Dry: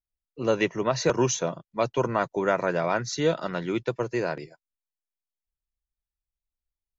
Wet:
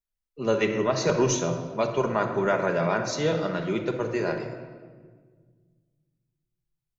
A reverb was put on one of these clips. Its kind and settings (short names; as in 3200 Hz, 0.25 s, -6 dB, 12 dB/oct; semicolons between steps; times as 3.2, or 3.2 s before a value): shoebox room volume 1800 m³, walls mixed, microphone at 1.3 m; gain -1.5 dB